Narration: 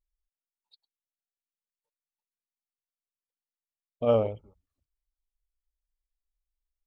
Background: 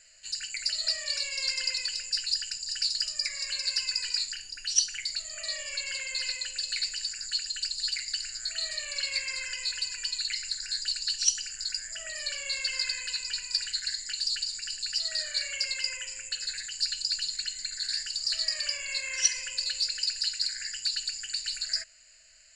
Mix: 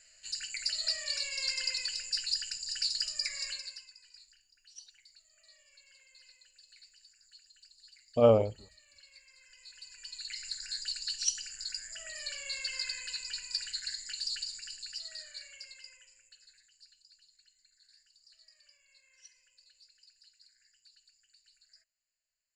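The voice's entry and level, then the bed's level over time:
4.15 s, +1.5 dB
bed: 0:03.47 −3.5 dB
0:03.94 −27 dB
0:09.33 −27 dB
0:10.49 −6 dB
0:14.43 −6 dB
0:17.07 −32.5 dB

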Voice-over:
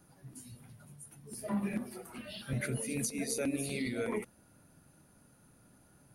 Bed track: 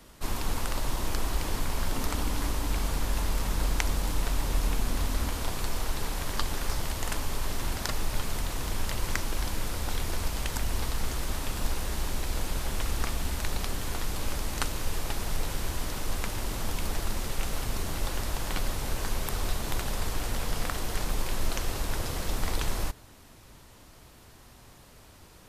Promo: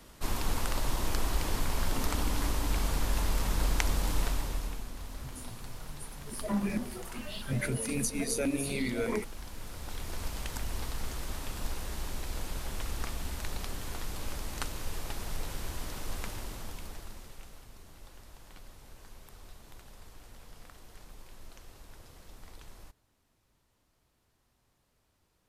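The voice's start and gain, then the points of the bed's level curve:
5.00 s, +3.0 dB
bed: 0:04.23 −1 dB
0:04.91 −13.5 dB
0:09.43 −13.5 dB
0:10.26 −6 dB
0:16.28 −6 dB
0:17.69 −21 dB

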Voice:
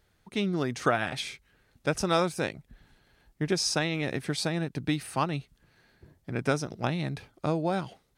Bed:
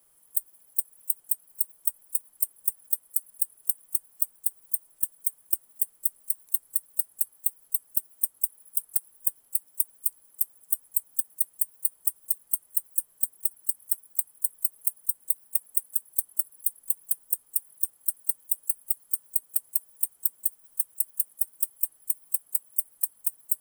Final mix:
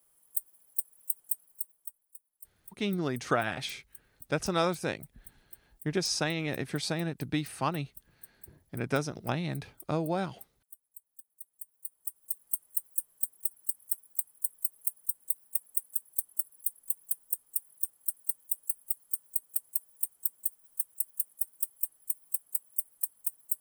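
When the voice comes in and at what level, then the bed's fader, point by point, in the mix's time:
2.45 s, −2.5 dB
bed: 0:01.43 −5 dB
0:02.21 −24.5 dB
0:11.20 −24.5 dB
0:12.49 −5 dB

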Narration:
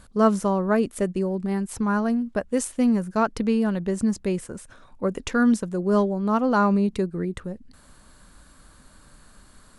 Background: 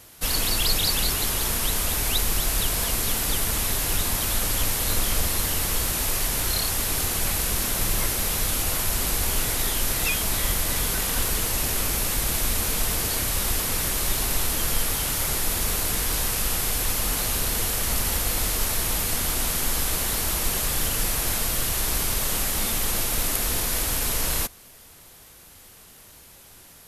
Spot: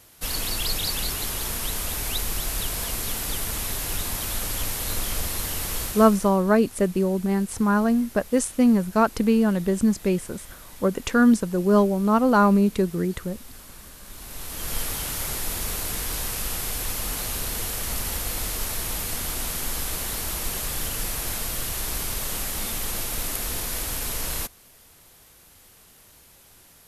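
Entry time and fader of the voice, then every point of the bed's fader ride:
5.80 s, +2.5 dB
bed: 0:05.83 −4 dB
0:06.43 −20.5 dB
0:14.03 −20.5 dB
0:14.77 −4 dB

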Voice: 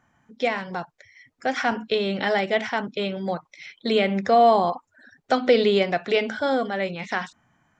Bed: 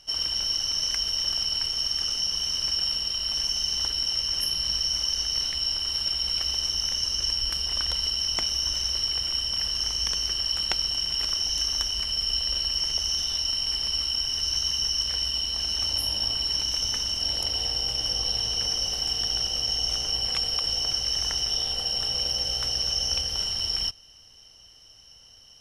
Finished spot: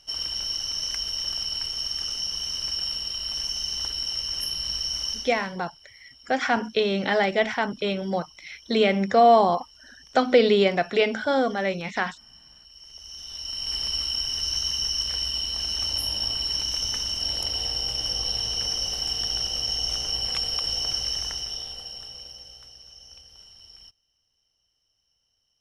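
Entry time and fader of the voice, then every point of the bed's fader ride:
4.85 s, +0.5 dB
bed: 0:05.11 −2.5 dB
0:05.59 −25 dB
0:12.63 −25 dB
0:13.77 −0.5 dB
0:21.04 −0.5 dB
0:22.80 −21.5 dB

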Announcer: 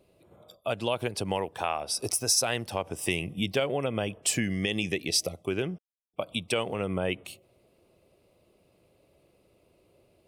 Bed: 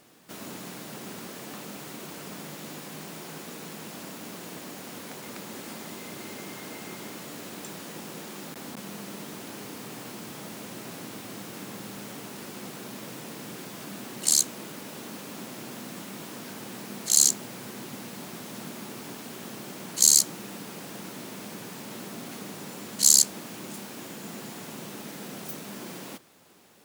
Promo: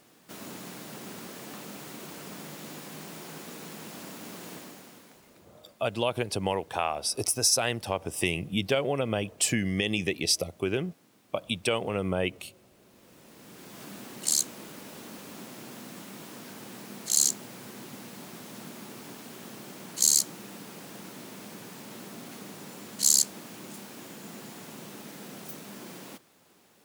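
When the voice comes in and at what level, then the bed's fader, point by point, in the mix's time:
5.15 s, +1.0 dB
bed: 0:04.54 −2 dB
0:05.51 −22.5 dB
0:12.76 −22.5 dB
0:13.83 −4 dB

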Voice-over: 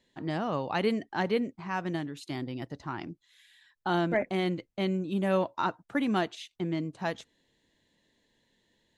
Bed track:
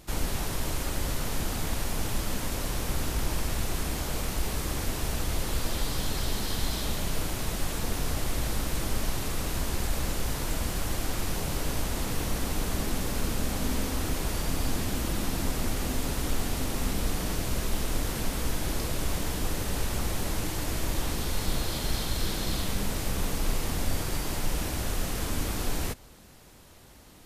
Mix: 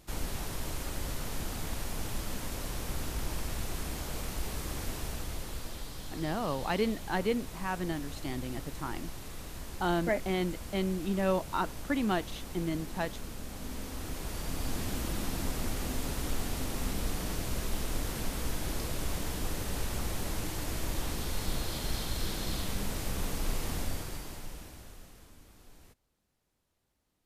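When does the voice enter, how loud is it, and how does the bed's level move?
5.95 s, −2.0 dB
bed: 0:04.93 −6 dB
0:05.92 −12.5 dB
0:13.45 −12.5 dB
0:14.88 −4.5 dB
0:23.77 −4.5 dB
0:25.41 −26.5 dB

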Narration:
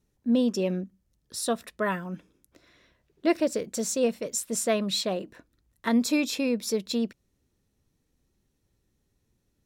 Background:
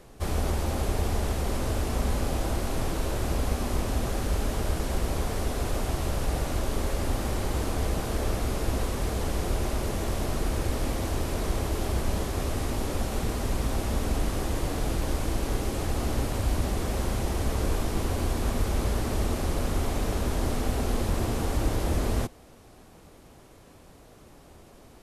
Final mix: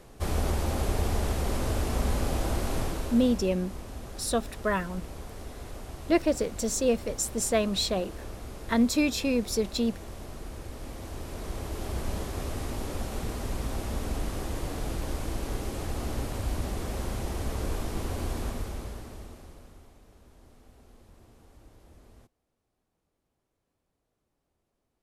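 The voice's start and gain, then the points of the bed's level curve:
2.85 s, 0.0 dB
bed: 0:02.77 −0.5 dB
0:03.57 −12.5 dB
0:10.72 −12.5 dB
0:12.05 −4.5 dB
0:18.40 −4.5 dB
0:20.01 −28.5 dB

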